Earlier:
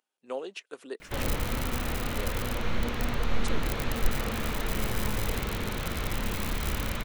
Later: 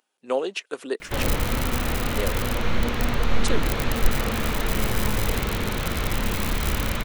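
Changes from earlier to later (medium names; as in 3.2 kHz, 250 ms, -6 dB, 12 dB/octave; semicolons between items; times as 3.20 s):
speech +10.5 dB; background +6.0 dB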